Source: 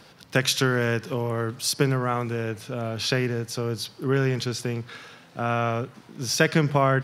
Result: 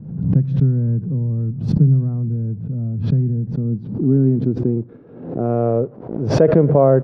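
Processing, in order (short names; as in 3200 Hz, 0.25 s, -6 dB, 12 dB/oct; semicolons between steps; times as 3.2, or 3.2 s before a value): in parallel at -6.5 dB: requantised 6-bit, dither none; on the sum: low-pass sweep 170 Hz -> 530 Hz, 3.21–6.03; maximiser +4.5 dB; backwards sustainer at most 72 dB/s; gain -1.5 dB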